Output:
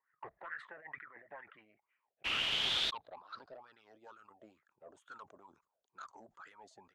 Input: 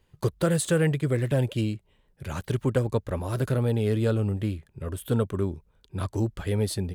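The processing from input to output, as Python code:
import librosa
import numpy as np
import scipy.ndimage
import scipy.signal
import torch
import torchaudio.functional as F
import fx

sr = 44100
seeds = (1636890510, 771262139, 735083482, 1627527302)

y = fx.highpass(x, sr, hz=210.0, slope=6)
y = fx.dynamic_eq(y, sr, hz=490.0, q=1.1, threshold_db=-38.0, ratio=4.0, max_db=-6)
y = fx.wah_lfo(y, sr, hz=2.2, low_hz=640.0, high_hz=1400.0, q=8.4)
y = 10.0 ** (-39.5 / 20.0) * np.tanh(y / 10.0 ** (-39.5 / 20.0))
y = fx.hpss(y, sr, part='harmonic', gain_db=-16)
y = fx.over_compress(y, sr, threshold_db=-60.0, ratio=-1.0, at=(0.76, 1.27))
y = fx.quant_dither(y, sr, seeds[0], bits=6, dither='triangular', at=(2.24, 2.89), fade=0.02)
y = fx.filter_sweep_lowpass(y, sr, from_hz=1900.0, to_hz=6800.0, start_s=1.47, end_s=4.23, q=7.5)
y = fx.sustainer(y, sr, db_per_s=150.0)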